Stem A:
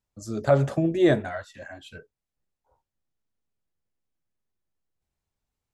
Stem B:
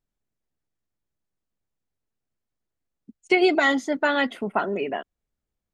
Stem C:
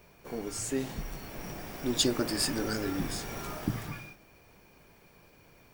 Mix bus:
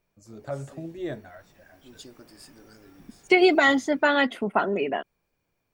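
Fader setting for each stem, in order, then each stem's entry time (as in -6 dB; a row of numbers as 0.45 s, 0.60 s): -13.5 dB, +1.0 dB, -19.5 dB; 0.00 s, 0.00 s, 0.00 s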